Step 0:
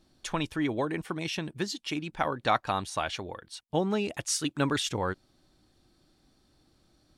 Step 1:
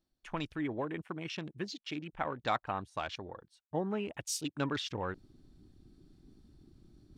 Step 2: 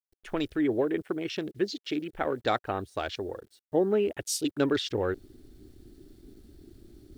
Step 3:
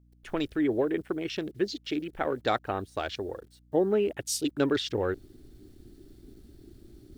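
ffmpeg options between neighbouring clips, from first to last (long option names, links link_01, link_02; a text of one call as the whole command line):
ffmpeg -i in.wav -af "areverse,acompressor=mode=upward:threshold=-35dB:ratio=2.5,areverse,afwtdn=0.01,volume=-6.5dB" out.wav
ffmpeg -i in.wav -af "acrusher=bits=11:mix=0:aa=0.000001,equalizer=frequency=160:width_type=o:width=0.67:gain=-9,equalizer=frequency=400:width_type=o:width=0.67:gain=7,equalizer=frequency=1000:width_type=o:width=0.67:gain=-10,equalizer=frequency=2500:width_type=o:width=0.67:gain=-5,equalizer=frequency=6300:width_type=o:width=0.67:gain=-4,volume=8dB" out.wav
ffmpeg -i in.wav -af "aeval=exprs='val(0)+0.00112*(sin(2*PI*60*n/s)+sin(2*PI*2*60*n/s)/2+sin(2*PI*3*60*n/s)/3+sin(2*PI*4*60*n/s)/4+sin(2*PI*5*60*n/s)/5)':channel_layout=same" out.wav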